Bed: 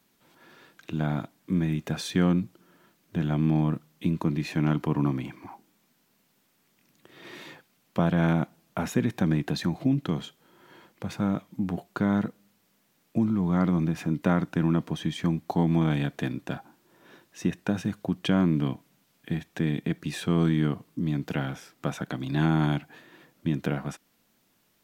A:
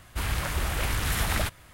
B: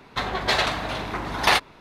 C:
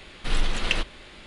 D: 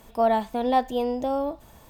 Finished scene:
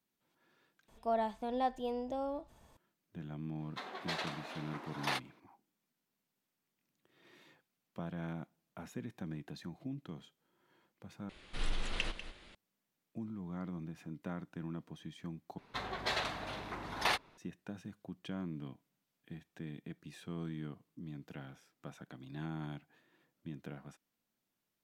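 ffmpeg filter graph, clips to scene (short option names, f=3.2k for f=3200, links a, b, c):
-filter_complex "[2:a]asplit=2[a][b];[0:a]volume=-18.5dB[c];[4:a]lowpass=10k[d];[a]highpass=f=220:w=0.5412,highpass=f=220:w=1.3066[e];[3:a]aecho=1:1:194:0.266[f];[b]equalizer=f=60:t=o:w=0.43:g=-7.5[g];[c]asplit=4[h][i][j][k];[h]atrim=end=0.884[l];[d]atrim=end=1.89,asetpts=PTS-STARTPTS,volume=-12dB[m];[i]atrim=start=2.766:end=11.294[n];[f]atrim=end=1.26,asetpts=PTS-STARTPTS,volume=-12dB[o];[j]atrim=start=12.546:end=15.584[p];[g]atrim=end=1.8,asetpts=PTS-STARTPTS,volume=-13.5dB[q];[k]atrim=start=17.376[r];[e]atrim=end=1.8,asetpts=PTS-STARTPTS,volume=-17.5dB,afade=t=in:d=0.004:c=hsin,afade=t=out:st=1.796:d=0.004:c=hsin,adelay=3600[s];[l][m]acrossfade=d=0.004:c1=hsin:c2=hsin[t];[t][n]acrossfade=d=0.004:c1=hsin:c2=hsin[u];[u][o]acrossfade=d=0.004:c1=hsin:c2=hsin[v];[v][p]acrossfade=d=0.004:c1=hsin:c2=hsin[w];[w][q]acrossfade=d=0.004:c1=hsin:c2=hsin[x];[x][r]acrossfade=d=0.004:c1=hsin:c2=hsin[y];[y][s]amix=inputs=2:normalize=0"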